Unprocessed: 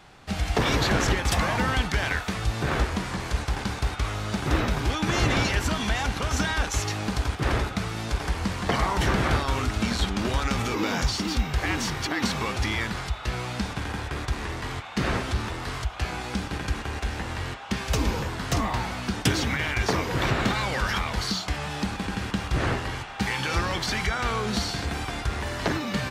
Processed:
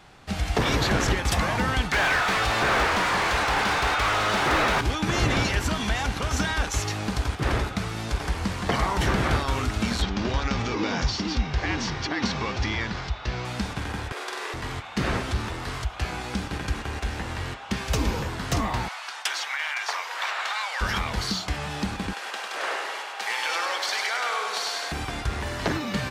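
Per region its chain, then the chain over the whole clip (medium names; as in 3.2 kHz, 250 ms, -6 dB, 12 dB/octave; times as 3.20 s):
1.92–4.81 s: peaking EQ 190 Hz -7 dB 2.5 oct + overdrive pedal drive 29 dB, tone 1.8 kHz, clips at -13 dBFS
10.02–13.45 s: Chebyshev low-pass 5.7 kHz, order 3 + band-stop 1.3 kHz, Q 24
14.12–14.54 s: inverse Chebyshev high-pass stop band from 190 Hz + flutter echo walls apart 7.9 m, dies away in 0.78 s
18.88–20.81 s: high-pass 780 Hz 24 dB/octave + treble shelf 11 kHz -8 dB
22.13–24.92 s: high-pass 520 Hz 24 dB/octave + feedback delay 100 ms, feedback 55%, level -4.5 dB
whole clip: none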